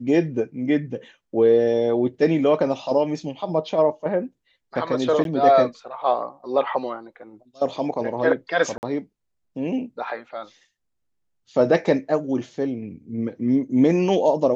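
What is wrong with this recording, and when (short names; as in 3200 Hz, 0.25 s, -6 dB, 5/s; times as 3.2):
5.24–5.25 gap 12 ms
8.78–8.83 gap 49 ms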